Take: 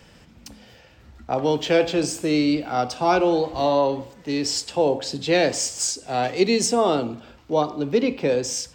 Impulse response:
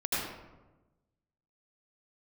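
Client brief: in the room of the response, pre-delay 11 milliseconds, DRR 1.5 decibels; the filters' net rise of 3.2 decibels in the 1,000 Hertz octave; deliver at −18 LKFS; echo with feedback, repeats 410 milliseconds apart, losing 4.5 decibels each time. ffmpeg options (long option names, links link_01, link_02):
-filter_complex "[0:a]equalizer=frequency=1000:width_type=o:gain=4.5,aecho=1:1:410|820|1230|1640|2050|2460|2870|3280|3690:0.596|0.357|0.214|0.129|0.0772|0.0463|0.0278|0.0167|0.01,asplit=2[link_01][link_02];[1:a]atrim=start_sample=2205,adelay=11[link_03];[link_02][link_03]afir=irnorm=-1:irlink=0,volume=-10dB[link_04];[link_01][link_04]amix=inputs=2:normalize=0,volume=-1dB"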